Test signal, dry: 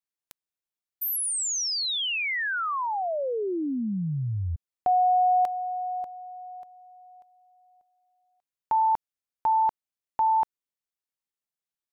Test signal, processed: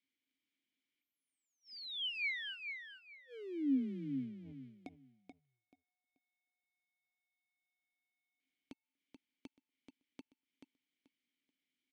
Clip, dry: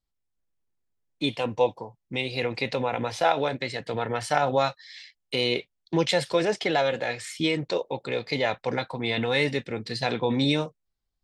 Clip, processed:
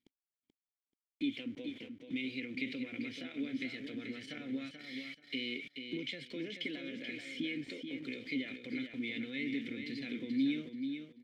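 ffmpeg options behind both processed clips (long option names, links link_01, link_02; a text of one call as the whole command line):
ffmpeg -i in.wav -filter_complex "[0:a]aeval=exprs='val(0)+0.5*0.0168*sgn(val(0))':channel_layout=same,acompressor=threshold=-41dB:ratio=2.5:attack=54:release=64:knee=6:detection=peak,asplit=3[link_01][link_02][link_03];[link_01]bandpass=frequency=270:width_type=q:width=8,volume=0dB[link_04];[link_02]bandpass=frequency=2290:width_type=q:width=8,volume=-6dB[link_05];[link_03]bandpass=frequency=3010:width_type=q:width=8,volume=-9dB[link_06];[link_04][link_05][link_06]amix=inputs=3:normalize=0,agate=range=-34dB:threshold=-58dB:ratio=16:release=29:detection=rms,asplit=2[link_07][link_08];[link_08]aecho=0:1:433|866|1299:0.447|0.0983|0.0216[link_09];[link_07][link_09]amix=inputs=2:normalize=0,volume=6dB" out.wav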